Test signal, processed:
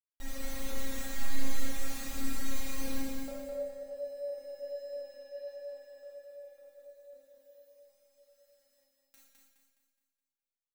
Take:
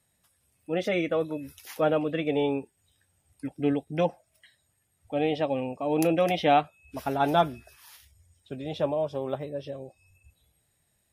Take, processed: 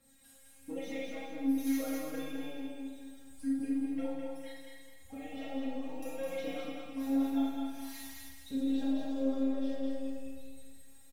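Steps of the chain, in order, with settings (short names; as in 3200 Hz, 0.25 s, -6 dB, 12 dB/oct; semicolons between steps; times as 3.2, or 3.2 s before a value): G.711 law mismatch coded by mu; comb 4.2 ms, depth 42%; compressor 3:1, threshold -40 dBFS; hard clip -22.5 dBFS; phaser 1.4 Hz, delay 1.8 ms, feedback 60%; resonator 270 Hz, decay 0.18 s, harmonics all, mix 100%; on a send: feedback echo 0.209 s, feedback 43%, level -3 dB; on the sum: Schroeder reverb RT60 0.8 s, combs from 26 ms, DRR -3.5 dB; gain +3 dB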